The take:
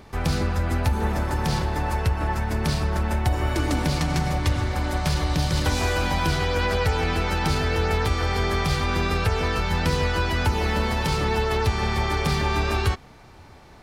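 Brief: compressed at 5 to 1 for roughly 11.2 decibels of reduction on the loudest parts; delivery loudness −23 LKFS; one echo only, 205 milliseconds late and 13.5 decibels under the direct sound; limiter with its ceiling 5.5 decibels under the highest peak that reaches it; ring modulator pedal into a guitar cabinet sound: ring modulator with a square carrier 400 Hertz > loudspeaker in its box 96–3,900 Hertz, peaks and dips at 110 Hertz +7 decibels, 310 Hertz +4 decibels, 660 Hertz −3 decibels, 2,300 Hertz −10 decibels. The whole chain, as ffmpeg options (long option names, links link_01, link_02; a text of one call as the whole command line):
ffmpeg -i in.wav -af "acompressor=threshold=-30dB:ratio=5,alimiter=level_in=1dB:limit=-24dB:level=0:latency=1,volume=-1dB,aecho=1:1:205:0.211,aeval=exprs='val(0)*sgn(sin(2*PI*400*n/s))':channel_layout=same,highpass=96,equalizer=frequency=110:width_type=q:width=4:gain=7,equalizer=frequency=310:width_type=q:width=4:gain=4,equalizer=frequency=660:width_type=q:width=4:gain=-3,equalizer=frequency=2300:width_type=q:width=4:gain=-10,lowpass=frequency=3900:width=0.5412,lowpass=frequency=3900:width=1.3066,volume=10dB" out.wav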